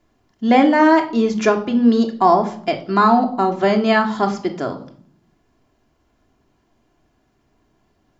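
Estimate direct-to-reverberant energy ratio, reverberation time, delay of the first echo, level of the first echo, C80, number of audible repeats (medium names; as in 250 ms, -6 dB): 3.0 dB, 0.55 s, no echo, no echo, 17.0 dB, no echo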